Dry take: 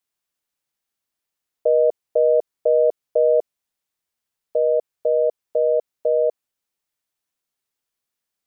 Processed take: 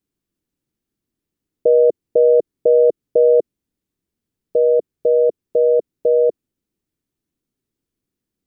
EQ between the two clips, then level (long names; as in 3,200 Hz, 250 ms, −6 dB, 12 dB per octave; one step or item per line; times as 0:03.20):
tilt shelving filter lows +4 dB, about 690 Hz
low shelf with overshoot 470 Hz +11.5 dB, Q 1.5
0.0 dB